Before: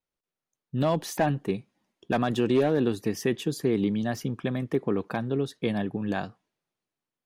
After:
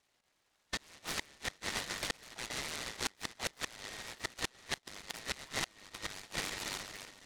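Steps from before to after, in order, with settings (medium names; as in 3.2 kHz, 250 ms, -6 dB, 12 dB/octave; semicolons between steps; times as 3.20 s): four frequency bands reordered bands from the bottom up 3142; echo whose repeats swap between lows and highs 139 ms, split 1.7 kHz, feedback 57%, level -10.5 dB; inverted gate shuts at -21 dBFS, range -35 dB; dynamic bell 2.1 kHz, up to -4 dB, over -52 dBFS, Q 5.5; compression 10:1, threshold -50 dBFS, peak gain reduction 22 dB; mistuned SSB +190 Hz 310–3300 Hz; band-stop 1.7 kHz, Q 5.6; delay time shaken by noise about 1.9 kHz, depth 0.12 ms; trim +18 dB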